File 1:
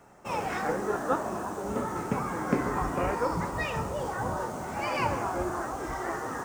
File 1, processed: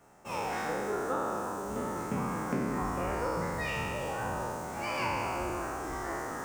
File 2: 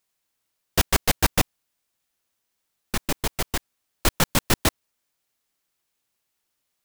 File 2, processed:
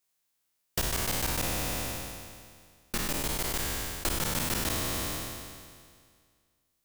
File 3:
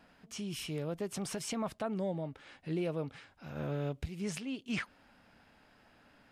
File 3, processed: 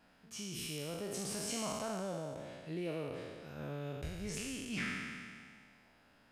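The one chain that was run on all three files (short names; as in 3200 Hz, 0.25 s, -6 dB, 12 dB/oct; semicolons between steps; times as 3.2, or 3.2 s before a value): spectral trails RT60 1.99 s; high shelf 5500 Hz +5 dB; compressor 6:1, threshold -20 dBFS; gain -7 dB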